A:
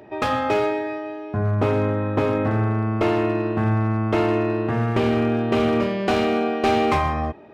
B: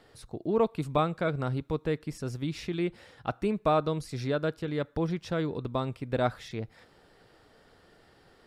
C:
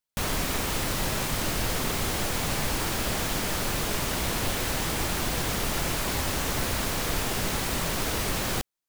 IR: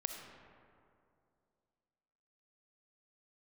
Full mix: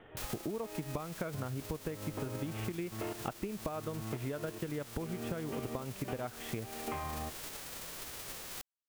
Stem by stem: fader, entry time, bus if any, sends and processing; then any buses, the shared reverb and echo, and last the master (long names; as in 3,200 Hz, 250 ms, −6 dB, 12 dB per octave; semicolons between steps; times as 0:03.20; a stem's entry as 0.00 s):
−13.5 dB, 0.00 s, bus A, no send, gate pattern "...xx.x..xxxx.x" 72 BPM −12 dB
+2.5 dB, 0.00 s, bus A, no send, transient designer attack +6 dB, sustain −1 dB
−10.5 dB, 0.00 s, no bus, no send, spectral envelope flattened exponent 0.3; automatic ducking −7 dB, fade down 0.40 s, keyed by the second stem
bus A: 0.0 dB, Butterworth low-pass 3,400 Hz 96 dB per octave; downward compressor, threshold −25 dBFS, peak gain reduction 11.5 dB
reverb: not used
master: downward compressor, threshold −35 dBFS, peak gain reduction 12.5 dB